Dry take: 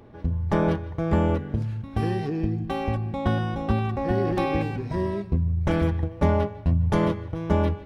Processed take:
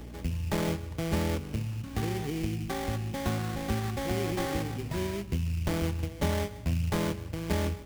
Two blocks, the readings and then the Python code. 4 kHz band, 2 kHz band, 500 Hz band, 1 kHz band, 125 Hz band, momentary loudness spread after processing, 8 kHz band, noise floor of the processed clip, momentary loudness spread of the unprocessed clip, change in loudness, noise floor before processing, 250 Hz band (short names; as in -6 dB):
+2.5 dB, -3.0 dB, -7.5 dB, -7.5 dB, -6.5 dB, 4 LU, n/a, -42 dBFS, 5 LU, -6.5 dB, -40 dBFS, -7.0 dB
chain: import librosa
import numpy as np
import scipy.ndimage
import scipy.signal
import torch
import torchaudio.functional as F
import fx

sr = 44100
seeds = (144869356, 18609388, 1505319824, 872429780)

y = fx.sample_hold(x, sr, seeds[0], rate_hz=2700.0, jitter_pct=20)
y = fx.add_hum(y, sr, base_hz=60, snr_db=18)
y = fx.band_squash(y, sr, depth_pct=40)
y = y * librosa.db_to_amplitude(-7.0)